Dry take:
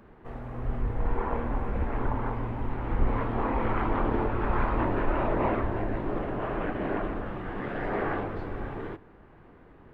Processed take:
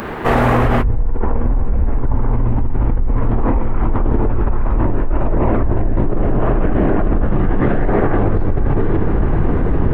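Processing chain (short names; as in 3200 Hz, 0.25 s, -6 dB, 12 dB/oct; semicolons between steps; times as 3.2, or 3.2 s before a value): tilt +2 dB/oct, from 0.83 s -3 dB/oct; fast leveller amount 100%; gain -9.5 dB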